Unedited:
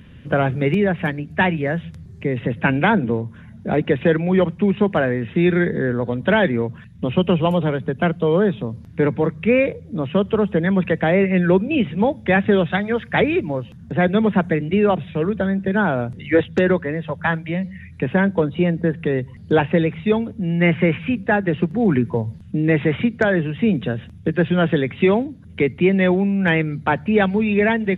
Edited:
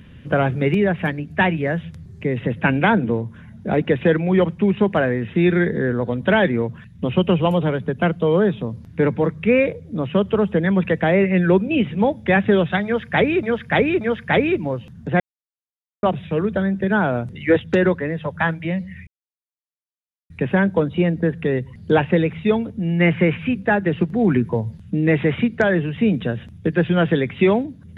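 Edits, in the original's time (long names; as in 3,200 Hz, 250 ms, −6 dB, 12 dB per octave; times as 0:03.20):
0:12.85–0:13.43: repeat, 3 plays
0:14.04–0:14.87: silence
0:17.91: splice in silence 1.23 s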